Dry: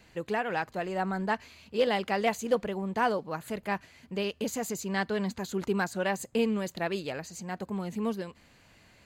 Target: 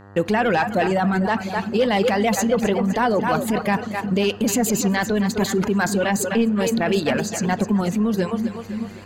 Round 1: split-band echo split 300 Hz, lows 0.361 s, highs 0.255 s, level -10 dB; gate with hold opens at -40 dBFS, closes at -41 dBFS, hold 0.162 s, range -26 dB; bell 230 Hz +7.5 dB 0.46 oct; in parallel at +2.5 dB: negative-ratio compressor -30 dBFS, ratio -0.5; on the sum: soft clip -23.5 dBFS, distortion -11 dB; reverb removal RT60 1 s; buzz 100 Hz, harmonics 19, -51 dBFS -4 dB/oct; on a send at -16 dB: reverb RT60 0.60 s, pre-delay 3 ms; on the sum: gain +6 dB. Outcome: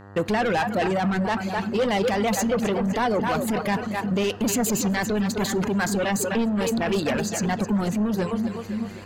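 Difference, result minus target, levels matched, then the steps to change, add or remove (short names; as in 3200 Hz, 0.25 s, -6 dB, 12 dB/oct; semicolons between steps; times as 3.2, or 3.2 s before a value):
soft clip: distortion +10 dB
change: soft clip -15 dBFS, distortion -20 dB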